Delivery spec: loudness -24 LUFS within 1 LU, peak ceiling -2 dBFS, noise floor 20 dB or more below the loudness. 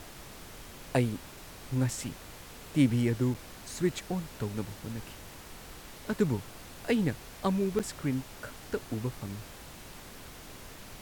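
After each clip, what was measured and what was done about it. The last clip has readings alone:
dropouts 2; longest dropout 7.1 ms; noise floor -48 dBFS; noise floor target -53 dBFS; loudness -32.5 LUFS; peak level -12.0 dBFS; loudness target -24.0 LUFS
-> interpolate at 3.34/7.79 s, 7.1 ms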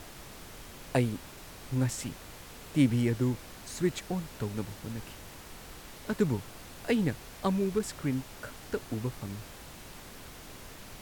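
dropouts 0; noise floor -48 dBFS; noise floor target -53 dBFS
-> noise print and reduce 6 dB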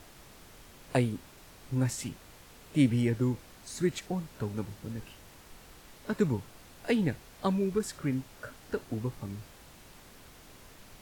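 noise floor -54 dBFS; loudness -32.5 LUFS; peak level -12.0 dBFS; loudness target -24.0 LUFS
-> trim +8.5 dB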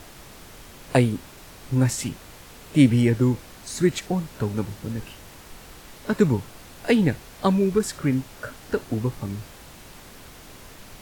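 loudness -24.0 LUFS; peak level -3.5 dBFS; noise floor -45 dBFS

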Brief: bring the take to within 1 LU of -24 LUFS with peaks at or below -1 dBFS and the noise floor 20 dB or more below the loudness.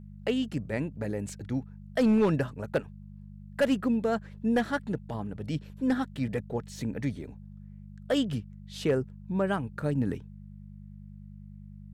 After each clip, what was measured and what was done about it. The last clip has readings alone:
clipped samples 0.4%; clipping level -18.0 dBFS; hum 50 Hz; highest harmonic 200 Hz; hum level -43 dBFS; loudness -30.5 LUFS; peak level -18.0 dBFS; loudness target -24.0 LUFS
-> clip repair -18 dBFS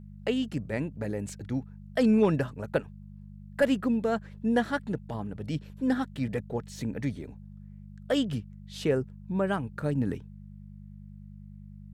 clipped samples 0.0%; hum 50 Hz; highest harmonic 200 Hz; hum level -43 dBFS
-> de-hum 50 Hz, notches 4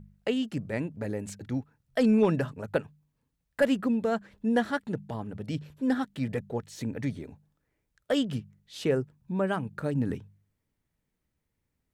hum not found; loudness -30.0 LUFS; peak level -12.0 dBFS; loudness target -24.0 LUFS
-> trim +6 dB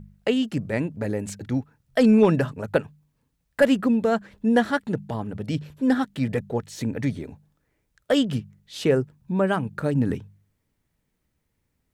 loudness -24.0 LUFS; peak level -6.0 dBFS; noise floor -75 dBFS

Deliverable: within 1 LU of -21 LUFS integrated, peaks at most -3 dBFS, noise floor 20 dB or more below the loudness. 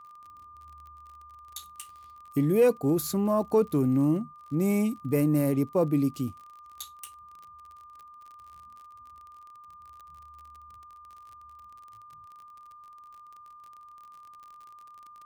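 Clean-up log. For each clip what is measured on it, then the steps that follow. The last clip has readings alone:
tick rate 41 per s; steady tone 1.2 kHz; tone level -47 dBFS; loudness -26.0 LUFS; peak level -12.5 dBFS; loudness target -21.0 LUFS
-> de-click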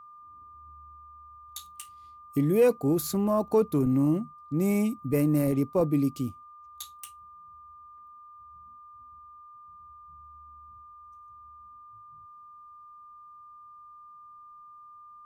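tick rate 1.6 per s; steady tone 1.2 kHz; tone level -47 dBFS
-> band-stop 1.2 kHz, Q 30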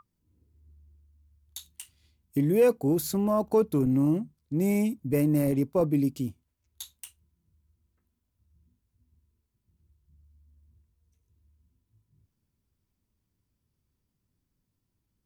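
steady tone not found; loudness -26.0 LUFS; peak level -12.5 dBFS; loudness target -21.0 LUFS
-> trim +5 dB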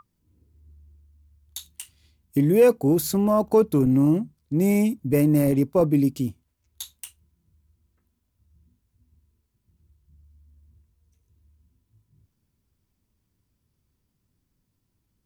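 loudness -21.0 LUFS; peak level -7.5 dBFS; noise floor -75 dBFS

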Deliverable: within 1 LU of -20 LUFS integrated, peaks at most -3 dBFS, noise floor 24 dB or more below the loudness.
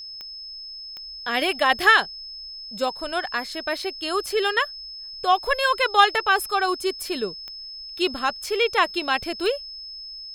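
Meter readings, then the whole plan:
clicks found 4; steady tone 5.2 kHz; tone level -35 dBFS; loudness -22.5 LUFS; peak level -2.0 dBFS; loudness target -20.0 LUFS
-> de-click; band-stop 5.2 kHz, Q 30; trim +2.5 dB; peak limiter -3 dBFS

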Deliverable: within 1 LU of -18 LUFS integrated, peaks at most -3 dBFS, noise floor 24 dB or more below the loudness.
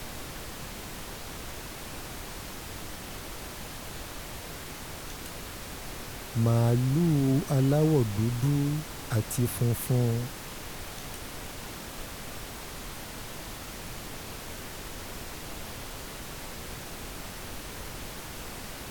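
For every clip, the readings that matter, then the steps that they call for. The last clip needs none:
noise floor -41 dBFS; noise floor target -57 dBFS; loudness -32.5 LUFS; peak level -12.0 dBFS; loudness target -18.0 LUFS
-> noise print and reduce 16 dB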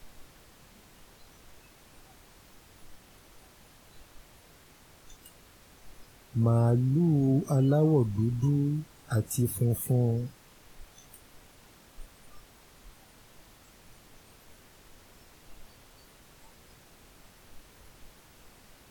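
noise floor -57 dBFS; loudness -27.0 LUFS; peak level -12.5 dBFS; loudness target -18.0 LUFS
-> trim +9 dB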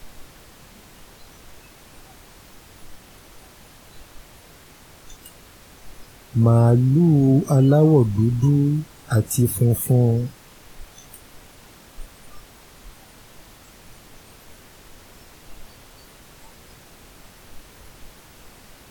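loudness -18.0 LUFS; peak level -3.5 dBFS; noise floor -48 dBFS

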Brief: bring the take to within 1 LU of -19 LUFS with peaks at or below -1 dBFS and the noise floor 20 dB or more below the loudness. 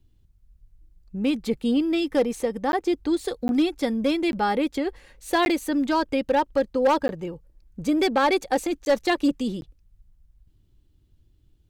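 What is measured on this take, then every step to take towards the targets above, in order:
clipped samples 0.6%; clipping level -14.0 dBFS; dropouts 7; longest dropout 11 ms; loudness -24.0 LUFS; peak level -14.0 dBFS; loudness target -19.0 LUFS
-> clip repair -14 dBFS; interpolate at 2.72/3.48/4.32/5.45/7.08/8.85/9.61 s, 11 ms; trim +5 dB

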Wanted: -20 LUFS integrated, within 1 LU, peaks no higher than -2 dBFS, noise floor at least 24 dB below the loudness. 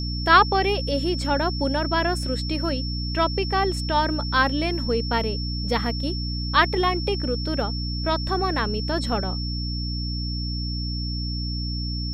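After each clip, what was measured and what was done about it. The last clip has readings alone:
hum 60 Hz; highest harmonic 300 Hz; hum level -26 dBFS; steady tone 5.4 kHz; tone level -32 dBFS; loudness -24.0 LUFS; peak level -3.5 dBFS; loudness target -20.0 LUFS
-> de-hum 60 Hz, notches 5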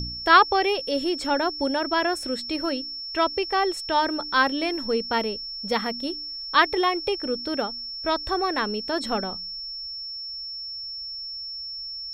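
hum not found; steady tone 5.4 kHz; tone level -32 dBFS
-> band-stop 5.4 kHz, Q 30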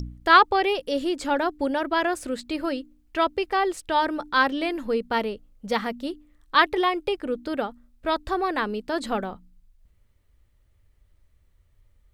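steady tone not found; loudness -24.5 LUFS; peak level -4.0 dBFS; loudness target -20.0 LUFS
-> trim +4.5 dB; peak limiter -2 dBFS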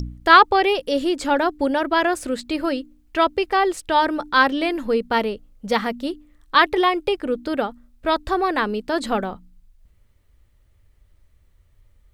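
loudness -20.5 LUFS; peak level -2.0 dBFS; noise floor -58 dBFS

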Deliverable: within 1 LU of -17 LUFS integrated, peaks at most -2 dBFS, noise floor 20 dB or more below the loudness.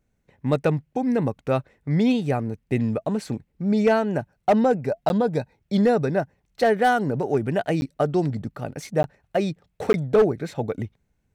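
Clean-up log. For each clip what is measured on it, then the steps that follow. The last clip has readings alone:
clipped samples 0.4%; clipping level -11.5 dBFS; dropouts 4; longest dropout 11 ms; loudness -23.5 LUFS; peak level -11.5 dBFS; loudness target -17.0 LUFS
-> clip repair -11.5 dBFS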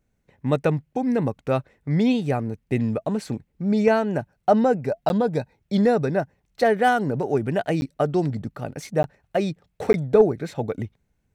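clipped samples 0.0%; dropouts 4; longest dropout 11 ms
-> interpolate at 5.09/7.81/9.03/9.93 s, 11 ms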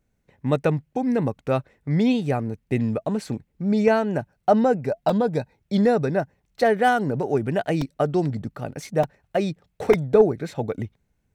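dropouts 0; loudness -23.5 LUFS; peak level -5.0 dBFS; loudness target -17.0 LUFS
-> trim +6.5 dB; peak limiter -2 dBFS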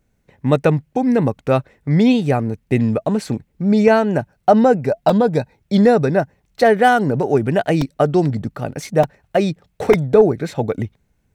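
loudness -17.0 LUFS; peak level -2.0 dBFS; noise floor -66 dBFS

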